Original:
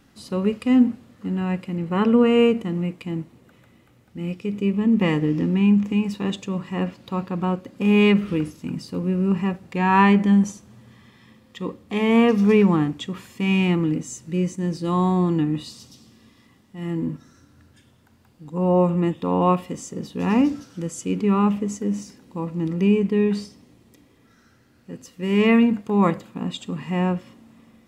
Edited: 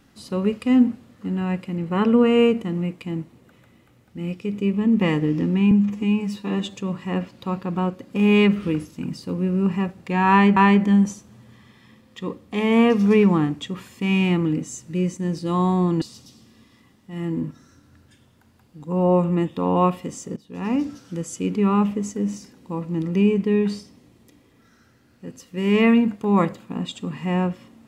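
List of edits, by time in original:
5.71–6.40 s: stretch 1.5×
9.95–10.22 s: loop, 2 plays
15.40–15.67 s: delete
20.02–20.71 s: fade in, from -18.5 dB

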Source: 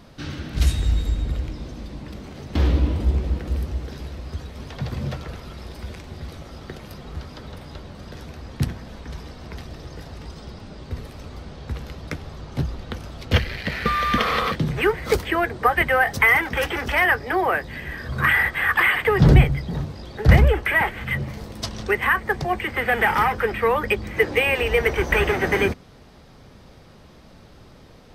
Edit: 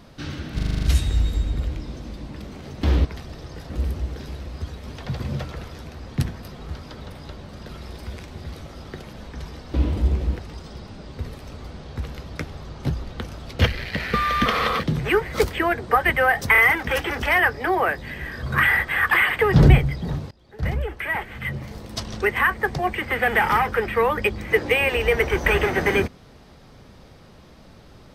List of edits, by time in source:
0.55 s: stutter 0.04 s, 8 plays
2.77–3.42 s: swap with 9.46–10.11 s
5.45–6.89 s: swap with 8.15–8.85 s
16.24 s: stutter 0.03 s, 3 plays
19.97–21.77 s: fade in linear, from -24 dB

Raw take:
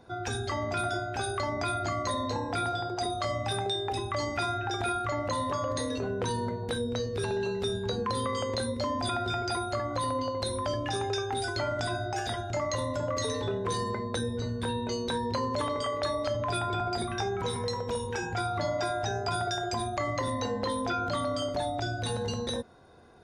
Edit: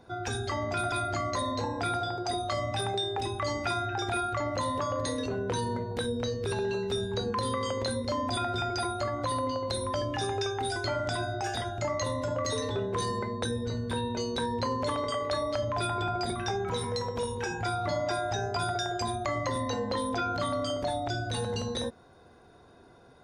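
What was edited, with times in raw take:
0.92–1.64 s: delete

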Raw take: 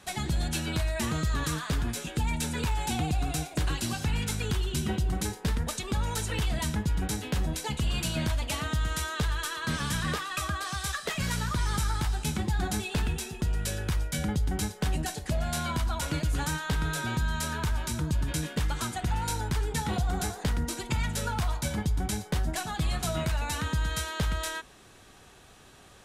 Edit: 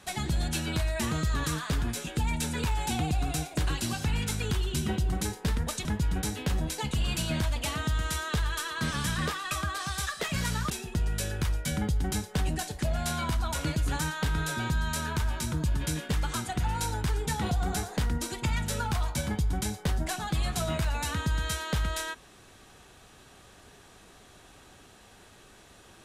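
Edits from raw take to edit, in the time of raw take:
5.85–6.71 s: delete
11.56–13.17 s: delete

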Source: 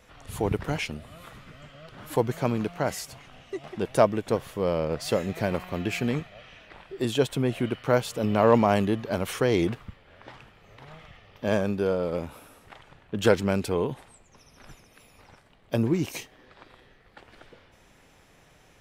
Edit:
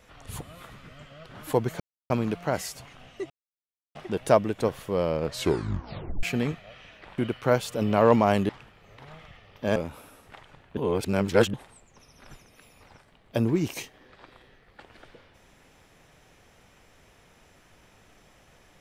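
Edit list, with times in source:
0.41–1.04 s: delete
2.43 s: insert silence 0.30 s
3.63 s: insert silence 0.65 s
4.93 s: tape stop 0.98 s
6.86–7.60 s: delete
8.91–10.29 s: delete
11.56–12.14 s: delete
13.15–13.92 s: reverse

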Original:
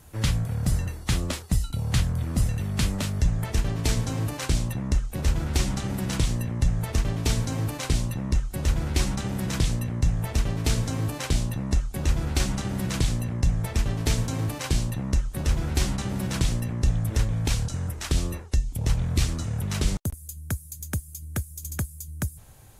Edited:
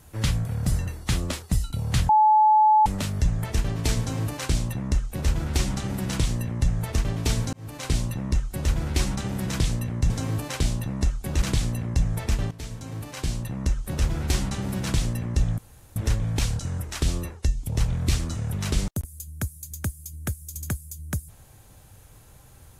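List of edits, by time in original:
2.09–2.86 s: bleep 860 Hz -13.5 dBFS
7.53–7.93 s: fade in
10.10–10.80 s: delete
12.12–12.89 s: delete
13.98–15.27 s: fade in, from -16.5 dB
17.05 s: insert room tone 0.38 s

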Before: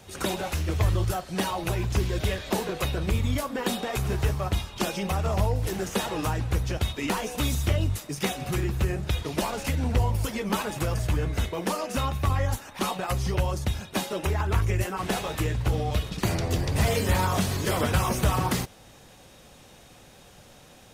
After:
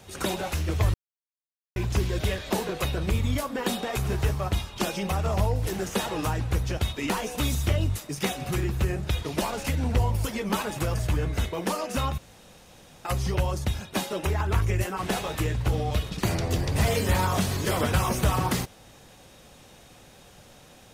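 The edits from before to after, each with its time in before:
0.94–1.76 s: mute
12.18–13.05 s: room tone

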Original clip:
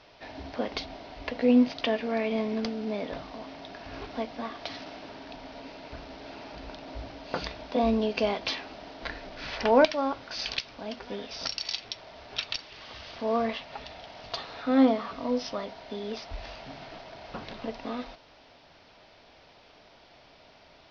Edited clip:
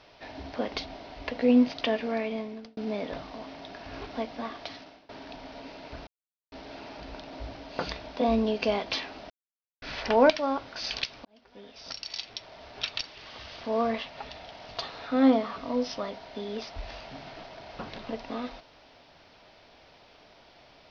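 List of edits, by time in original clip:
2.07–2.77 s: fade out
4.53–5.09 s: fade out linear, to -22 dB
6.07 s: insert silence 0.45 s
8.85–9.37 s: mute
10.80–12.18 s: fade in

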